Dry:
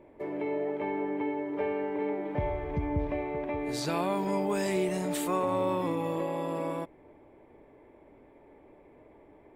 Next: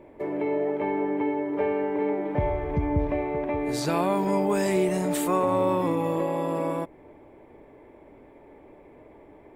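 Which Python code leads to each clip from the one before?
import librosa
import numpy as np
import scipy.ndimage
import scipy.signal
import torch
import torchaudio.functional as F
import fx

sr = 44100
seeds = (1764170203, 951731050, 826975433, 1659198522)

y = fx.dynamic_eq(x, sr, hz=3700.0, q=0.82, threshold_db=-53.0, ratio=4.0, max_db=-4)
y = F.gain(torch.from_numpy(y), 5.5).numpy()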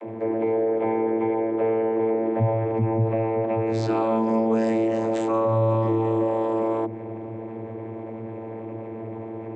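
y = fx.vocoder(x, sr, bands=32, carrier='saw', carrier_hz=112.0)
y = fx.env_flatten(y, sr, amount_pct=50)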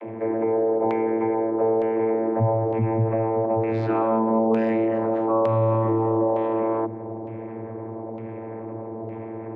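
y = fx.filter_lfo_lowpass(x, sr, shape='saw_down', hz=1.1, low_hz=820.0, high_hz=2800.0, q=1.4)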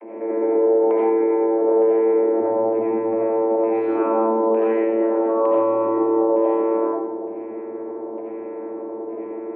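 y = fx.cabinet(x, sr, low_hz=240.0, low_slope=24, high_hz=2800.0, hz=(270.0, 390.0, 910.0), db=(7, 6, 4))
y = fx.rev_freeverb(y, sr, rt60_s=0.87, hf_ratio=0.4, predelay_ms=45, drr_db=-6.5)
y = F.gain(torch.from_numpy(y), -6.5).numpy()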